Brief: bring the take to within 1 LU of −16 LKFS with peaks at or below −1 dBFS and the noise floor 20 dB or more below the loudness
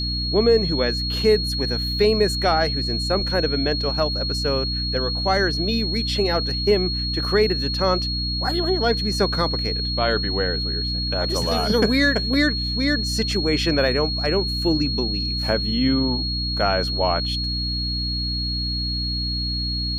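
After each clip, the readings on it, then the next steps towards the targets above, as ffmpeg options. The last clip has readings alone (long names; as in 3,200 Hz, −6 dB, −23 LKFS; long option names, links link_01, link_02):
mains hum 60 Hz; hum harmonics up to 300 Hz; level of the hum −25 dBFS; interfering tone 4,300 Hz; level of the tone −25 dBFS; integrated loudness −21.0 LKFS; sample peak −5.5 dBFS; target loudness −16.0 LKFS
→ -af "bandreject=frequency=60:width_type=h:width=6,bandreject=frequency=120:width_type=h:width=6,bandreject=frequency=180:width_type=h:width=6,bandreject=frequency=240:width_type=h:width=6,bandreject=frequency=300:width_type=h:width=6"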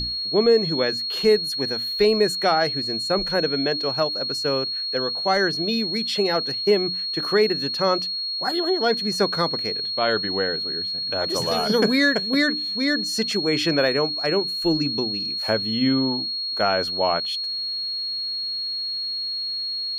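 mains hum none found; interfering tone 4,300 Hz; level of the tone −25 dBFS
→ -af "bandreject=frequency=4300:width=30"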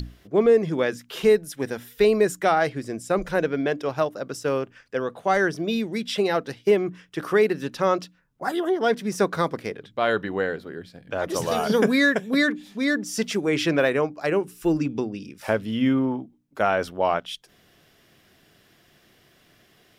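interfering tone none found; integrated loudness −24.0 LKFS; sample peak −8.0 dBFS; target loudness −16.0 LKFS
→ -af "volume=8dB,alimiter=limit=-1dB:level=0:latency=1"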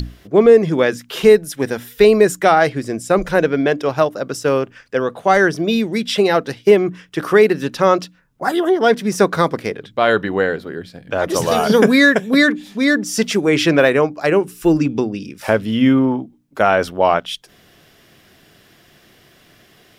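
integrated loudness −16.0 LKFS; sample peak −1.0 dBFS; background noise floor −52 dBFS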